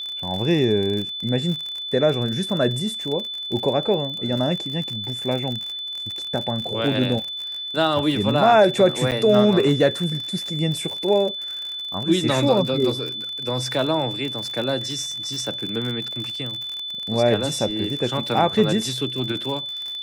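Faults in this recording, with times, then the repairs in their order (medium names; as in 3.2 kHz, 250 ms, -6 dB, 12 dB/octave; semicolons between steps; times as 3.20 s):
crackle 53 per s -27 dBFS
whine 3.5 kHz -28 dBFS
9.11–9.12 s: dropout 8 ms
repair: de-click; band-stop 3.5 kHz, Q 30; interpolate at 9.11 s, 8 ms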